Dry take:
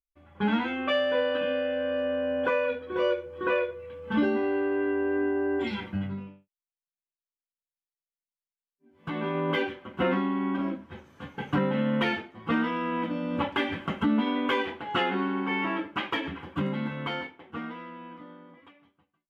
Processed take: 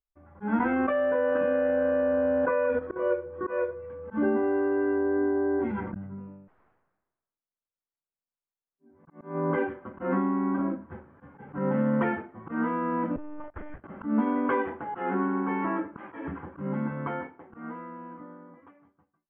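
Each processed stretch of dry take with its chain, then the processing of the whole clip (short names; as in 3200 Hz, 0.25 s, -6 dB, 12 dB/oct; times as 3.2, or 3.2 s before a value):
0.59–3.11 G.711 law mismatch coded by A + expander -23 dBFS + fast leveller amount 100%
4.98–9.58 high shelf 3500 Hz -12 dB + auto swell 0.408 s + sustainer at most 50 dB/s
13.16–13.84 gate -34 dBFS, range -23 dB + compressor 10:1, threshold -35 dBFS + monotone LPC vocoder at 8 kHz 300 Hz
whole clip: LPF 1600 Hz 24 dB/oct; auto swell 0.157 s; gain +1.5 dB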